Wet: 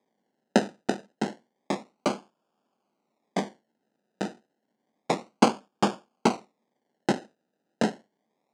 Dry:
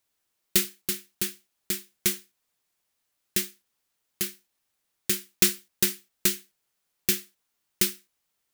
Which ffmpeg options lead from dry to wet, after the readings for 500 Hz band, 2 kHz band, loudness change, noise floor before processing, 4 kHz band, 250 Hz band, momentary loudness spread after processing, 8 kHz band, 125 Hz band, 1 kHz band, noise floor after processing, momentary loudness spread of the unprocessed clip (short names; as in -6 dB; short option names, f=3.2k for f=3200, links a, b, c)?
+9.5 dB, -0.5 dB, -2.5 dB, -78 dBFS, -7.0 dB, +8.0 dB, 12 LU, -14.5 dB, +4.5 dB, +21.0 dB, -80 dBFS, 9 LU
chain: -af "acrusher=samples=31:mix=1:aa=0.000001:lfo=1:lforange=18.6:lforate=0.3,highpass=f=180:w=0.5412,highpass=f=180:w=1.3066,equalizer=f=220:t=q:w=4:g=7,equalizer=f=780:t=q:w=4:g=4,equalizer=f=2.6k:t=q:w=4:g=-3,lowpass=f=8.1k:w=0.5412,lowpass=f=8.1k:w=1.3066"